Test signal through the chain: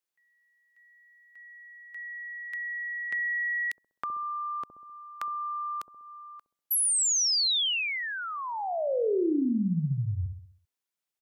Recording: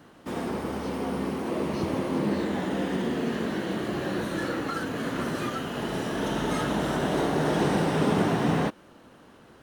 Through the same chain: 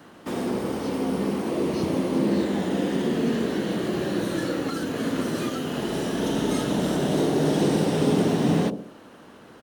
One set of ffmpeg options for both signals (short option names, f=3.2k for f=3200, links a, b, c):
-filter_complex "[0:a]lowshelf=f=110:g=-10,acrossover=split=570|2900[a][b][c];[a]aecho=1:1:65|130|195|260|325|390:0.501|0.241|0.115|0.0554|0.0266|0.0128[d];[b]acompressor=threshold=-42dB:ratio=6[e];[d][e][c]amix=inputs=3:normalize=0,volume=5dB"